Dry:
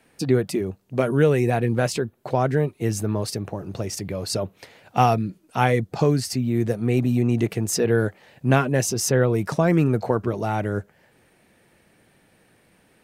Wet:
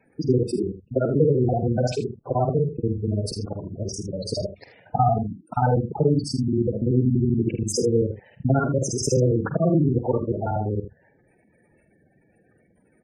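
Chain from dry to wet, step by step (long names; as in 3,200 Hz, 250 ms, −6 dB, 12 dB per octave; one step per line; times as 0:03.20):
reversed piece by piece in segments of 48 ms
gate on every frequency bin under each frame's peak −10 dB strong
ambience of single reflections 48 ms −11.5 dB, 79 ms −12.5 dB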